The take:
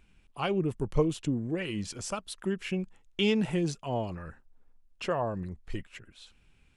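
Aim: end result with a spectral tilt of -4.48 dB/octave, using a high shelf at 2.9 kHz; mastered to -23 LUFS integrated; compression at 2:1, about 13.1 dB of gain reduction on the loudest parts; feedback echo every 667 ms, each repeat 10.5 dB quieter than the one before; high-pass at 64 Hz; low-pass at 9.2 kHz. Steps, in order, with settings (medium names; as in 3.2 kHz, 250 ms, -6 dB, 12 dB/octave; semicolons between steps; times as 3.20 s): high-pass 64 Hz; low-pass 9.2 kHz; treble shelf 2.9 kHz +6.5 dB; compression 2:1, threshold -44 dBFS; feedback delay 667 ms, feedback 30%, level -10.5 dB; trim +18.5 dB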